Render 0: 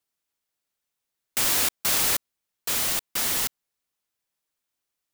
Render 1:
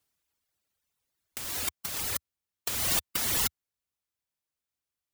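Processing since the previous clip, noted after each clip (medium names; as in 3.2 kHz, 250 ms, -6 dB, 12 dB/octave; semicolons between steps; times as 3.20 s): reverb removal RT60 1.9 s; peaking EQ 78 Hz +10 dB 1.5 oct; compressor with a negative ratio -29 dBFS, ratio -0.5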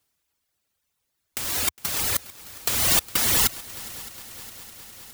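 in parallel at -9.5 dB: bit crusher 7-bit; on the sum: multi-head delay 205 ms, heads second and third, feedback 72%, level -20 dB; trim +5 dB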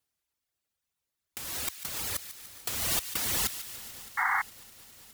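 vibrato 3.1 Hz 31 cents; feedback echo behind a high-pass 146 ms, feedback 62%, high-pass 1.7 kHz, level -11.5 dB; painted sound noise, 4.17–4.42 s, 740–2200 Hz -18 dBFS; trim -9 dB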